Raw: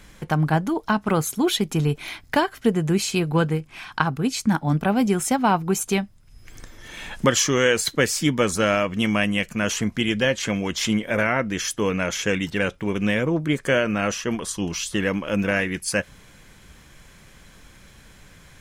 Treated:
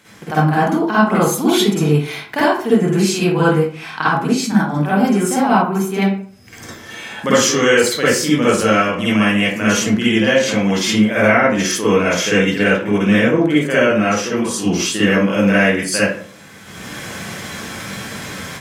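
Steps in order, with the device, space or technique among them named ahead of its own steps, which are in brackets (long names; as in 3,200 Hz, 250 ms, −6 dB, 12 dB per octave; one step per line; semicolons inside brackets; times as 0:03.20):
far laptop microphone (convolution reverb RT60 0.45 s, pre-delay 46 ms, DRR −9.5 dB; high-pass filter 180 Hz 12 dB per octave; automatic gain control gain up to 14.5 dB)
0:05.62–0:06.02: parametric band 7,200 Hz −12 dB 1.7 octaves
level −1 dB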